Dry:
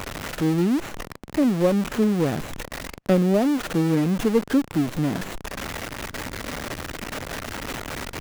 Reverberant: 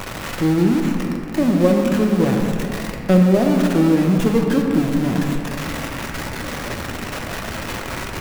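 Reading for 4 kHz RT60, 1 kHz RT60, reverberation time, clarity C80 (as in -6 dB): 1.6 s, 2.5 s, 2.7 s, 4.0 dB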